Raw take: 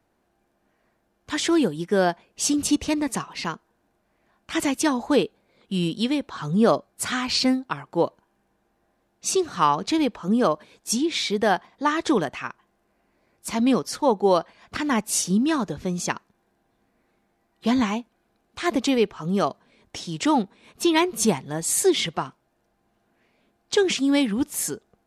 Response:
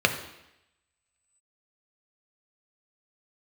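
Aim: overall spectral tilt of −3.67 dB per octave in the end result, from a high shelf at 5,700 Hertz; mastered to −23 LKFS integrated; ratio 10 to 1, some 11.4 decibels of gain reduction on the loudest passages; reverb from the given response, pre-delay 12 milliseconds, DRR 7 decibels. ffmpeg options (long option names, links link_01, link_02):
-filter_complex "[0:a]highshelf=frequency=5700:gain=-3,acompressor=threshold=-26dB:ratio=10,asplit=2[link_01][link_02];[1:a]atrim=start_sample=2205,adelay=12[link_03];[link_02][link_03]afir=irnorm=-1:irlink=0,volume=-23dB[link_04];[link_01][link_04]amix=inputs=2:normalize=0,volume=8dB"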